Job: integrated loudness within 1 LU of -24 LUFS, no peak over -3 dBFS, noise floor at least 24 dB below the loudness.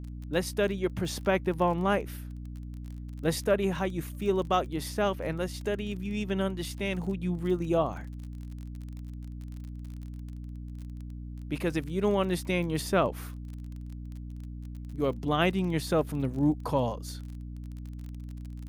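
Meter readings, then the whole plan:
tick rate 32 per s; hum 60 Hz; highest harmonic 300 Hz; hum level -37 dBFS; loudness -30.0 LUFS; peak level -12.0 dBFS; loudness target -24.0 LUFS
-> de-click; de-hum 60 Hz, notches 5; trim +6 dB

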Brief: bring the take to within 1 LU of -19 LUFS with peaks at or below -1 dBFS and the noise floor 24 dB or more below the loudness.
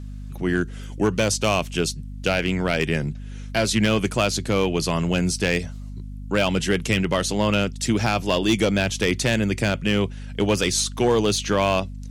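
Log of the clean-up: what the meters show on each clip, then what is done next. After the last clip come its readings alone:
clipped samples 0.8%; clipping level -12.0 dBFS; hum 50 Hz; highest harmonic 250 Hz; hum level -32 dBFS; loudness -22.5 LUFS; peak level -12.0 dBFS; loudness target -19.0 LUFS
-> clip repair -12 dBFS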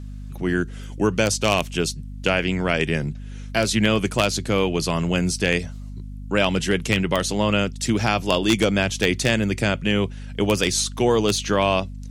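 clipped samples 0.0%; hum 50 Hz; highest harmonic 250 Hz; hum level -32 dBFS
-> de-hum 50 Hz, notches 5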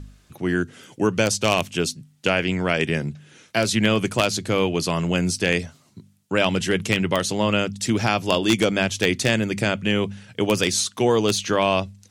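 hum not found; loudness -22.0 LUFS; peak level -2.5 dBFS; loudness target -19.0 LUFS
-> trim +3 dB; peak limiter -1 dBFS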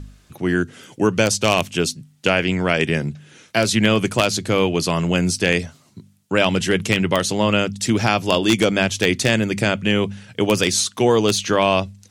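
loudness -19.0 LUFS; peak level -1.0 dBFS; noise floor -55 dBFS

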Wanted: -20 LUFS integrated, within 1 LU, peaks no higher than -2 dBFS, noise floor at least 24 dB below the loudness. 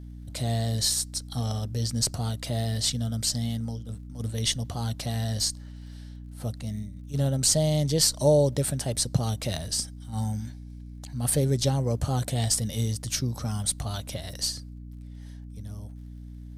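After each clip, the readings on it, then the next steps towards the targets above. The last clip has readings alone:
tick rate 35 per s; hum 60 Hz; highest harmonic 300 Hz; hum level -39 dBFS; loudness -27.0 LUFS; peak level -8.0 dBFS; loudness target -20.0 LUFS
-> de-click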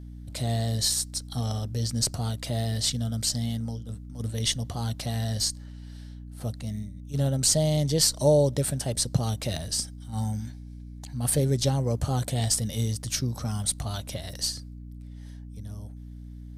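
tick rate 0.12 per s; hum 60 Hz; highest harmonic 300 Hz; hum level -40 dBFS
-> de-hum 60 Hz, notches 5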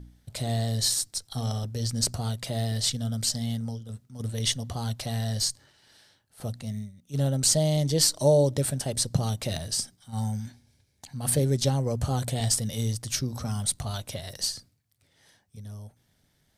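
hum not found; loudness -27.5 LUFS; peak level -8.0 dBFS; loudness target -20.0 LUFS
-> trim +7.5 dB; peak limiter -2 dBFS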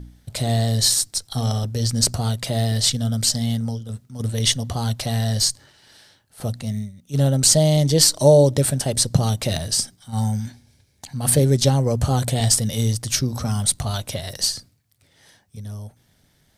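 loudness -20.0 LUFS; peak level -2.0 dBFS; noise floor -62 dBFS

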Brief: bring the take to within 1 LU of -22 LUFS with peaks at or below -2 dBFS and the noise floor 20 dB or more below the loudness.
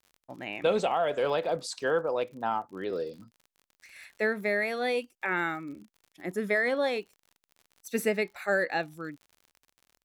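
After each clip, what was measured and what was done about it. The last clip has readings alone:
tick rate 53 per s; loudness -30.0 LUFS; peak level -13.5 dBFS; loudness target -22.0 LUFS
-> de-click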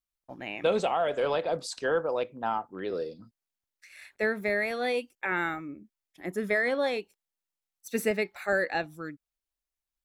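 tick rate 0.10 per s; loudness -30.0 LUFS; peak level -13.5 dBFS; loudness target -22.0 LUFS
-> trim +8 dB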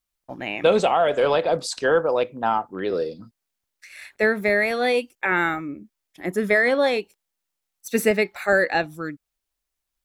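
loudness -22.0 LUFS; peak level -5.5 dBFS; noise floor -82 dBFS

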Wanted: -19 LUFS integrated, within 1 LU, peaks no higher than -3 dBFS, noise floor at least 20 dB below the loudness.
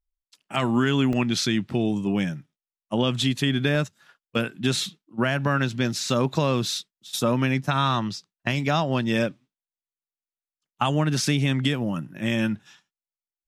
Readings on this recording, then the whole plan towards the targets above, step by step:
dropouts 3; longest dropout 1.5 ms; loudness -24.5 LUFS; peak level -7.5 dBFS; loudness target -19.0 LUFS
-> interpolate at 1.13/3.75/6.10 s, 1.5 ms; trim +5.5 dB; peak limiter -3 dBFS

